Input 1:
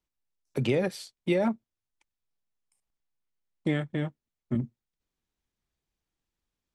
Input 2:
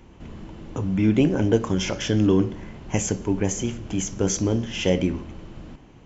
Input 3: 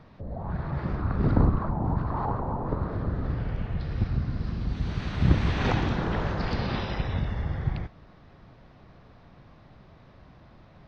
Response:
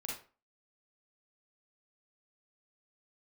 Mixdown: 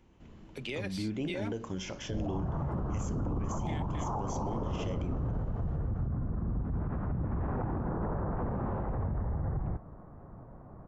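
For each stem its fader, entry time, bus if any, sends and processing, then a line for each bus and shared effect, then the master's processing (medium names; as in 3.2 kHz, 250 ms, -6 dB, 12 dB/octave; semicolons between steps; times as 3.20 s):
-12.0 dB, 0.00 s, no send, frequency weighting D
-13.5 dB, 0.00 s, no send, none
+3.0 dB, 1.90 s, no send, low-pass 1.2 kHz 24 dB/octave; peak limiter -20.5 dBFS, peak gain reduction 11.5 dB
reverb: none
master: peak limiter -26 dBFS, peak gain reduction 10 dB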